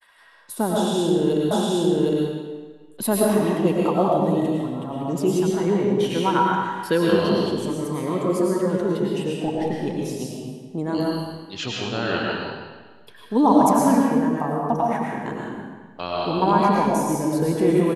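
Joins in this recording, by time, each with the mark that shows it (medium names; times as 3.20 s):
1.51 s: repeat of the last 0.76 s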